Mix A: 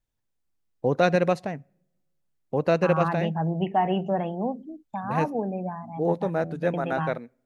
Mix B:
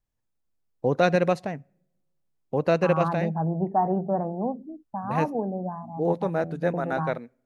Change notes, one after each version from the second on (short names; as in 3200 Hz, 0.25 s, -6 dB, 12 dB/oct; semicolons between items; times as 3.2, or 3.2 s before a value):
second voice: add steep low-pass 1400 Hz 36 dB/oct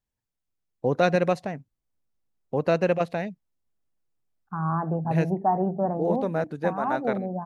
second voice: entry +1.70 s; reverb: off